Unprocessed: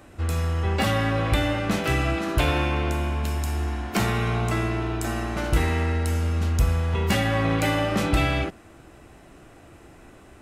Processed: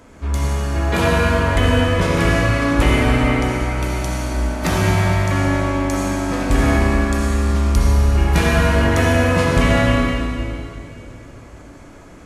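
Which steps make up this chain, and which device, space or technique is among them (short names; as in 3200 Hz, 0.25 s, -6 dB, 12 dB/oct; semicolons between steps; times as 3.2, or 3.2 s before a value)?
slowed and reverbed (varispeed -15%; reverb RT60 2.7 s, pre-delay 59 ms, DRR -2.5 dB); gain +3 dB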